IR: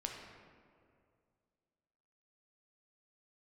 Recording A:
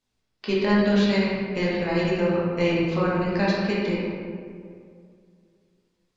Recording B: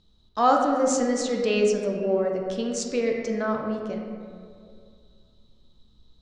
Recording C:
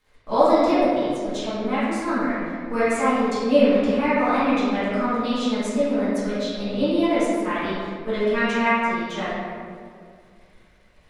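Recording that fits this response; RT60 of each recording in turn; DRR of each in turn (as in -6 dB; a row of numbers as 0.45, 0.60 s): B; 2.2, 2.2, 2.2 s; -6.5, 0.5, -14.0 dB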